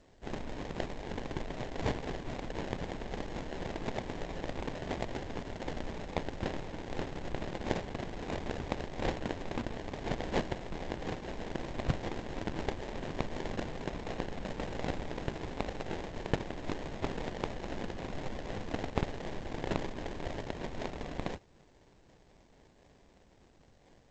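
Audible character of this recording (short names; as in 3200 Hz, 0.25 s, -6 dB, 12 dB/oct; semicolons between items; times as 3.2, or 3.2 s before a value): phasing stages 4, 3.9 Hz, lowest notch 710–1900 Hz; aliases and images of a low sample rate 1300 Hz, jitter 20%; G.722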